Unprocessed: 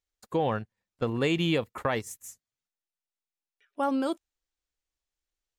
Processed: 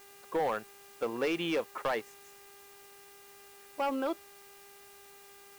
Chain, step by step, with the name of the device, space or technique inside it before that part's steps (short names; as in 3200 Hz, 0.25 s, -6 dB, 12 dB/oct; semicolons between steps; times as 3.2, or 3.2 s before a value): aircraft radio (BPF 390–2600 Hz; hard clip -25 dBFS, distortion -13 dB; buzz 400 Hz, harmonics 7, -58 dBFS -4 dB/oct; white noise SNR 20 dB)